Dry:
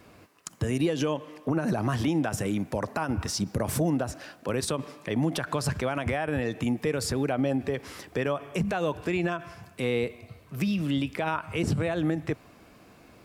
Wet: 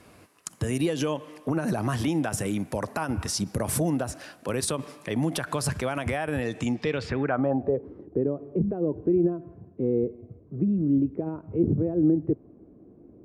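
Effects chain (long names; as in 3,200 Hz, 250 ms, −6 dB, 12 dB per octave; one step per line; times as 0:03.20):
low-pass filter sweep 11,000 Hz → 360 Hz, 0:06.47–0:07.90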